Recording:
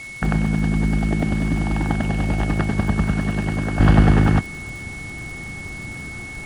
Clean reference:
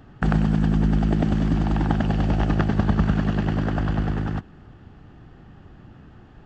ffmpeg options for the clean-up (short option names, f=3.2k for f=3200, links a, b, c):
-af "adeclick=t=4,bandreject=f=2.2k:w=30,afwtdn=0.0063,asetnsamples=n=441:p=0,asendcmd='3.8 volume volume -10.5dB',volume=0dB"